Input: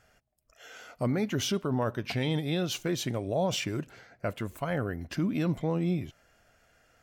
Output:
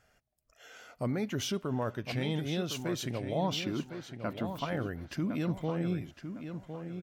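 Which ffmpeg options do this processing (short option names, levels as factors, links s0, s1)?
-filter_complex "[0:a]asettb=1/sr,asplit=3[s0][s1][s2];[s0]atrim=end=3.384[s3];[s1]atrim=start=3.38:end=4.66,asetpts=PTS-STARTPTS,afade=t=in:d=0.004:c=qsin,afade=t=out:st=1.276:d=0.004:c=qsin,equalizer=f=125:t=o:w=1:g=-4,equalizer=f=250:t=o:w=1:g=9,equalizer=f=500:t=o:w=1:g=-6,equalizer=f=1000:t=o:w=1:g=7,equalizer=f=2000:t=o:w=1:g=-4,equalizer=f=4000:t=o:w=1:g=7,equalizer=f=8000:t=o:w=1:g=-10[s4];[s2]atrim=start=4.656[s5];[s3][s4]acrossfade=d=0.004:c1=hsin:c2=qsin[s6];[s6][s5]acrossfade=d=0.004:c1=qsin:c2=hsin,asplit=2[s7][s8];[s8]adelay=1058,lowpass=f=3900:p=1,volume=0.376,asplit=2[s9][s10];[s10]adelay=1058,lowpass=f=3900:p=1,volume=0.31,asplit=2[s11][s12];[s12]adelay=1058,lowpass=f=3900:p=1,volume=0.31,asplit=2[s13][s14];[s14]adelay=1058,lowpass=f=3900:p=1,volume=0.31[s15];[s7][s9][s11][s13][s15]amix=inputs=5:normalize=0,volume=0.631"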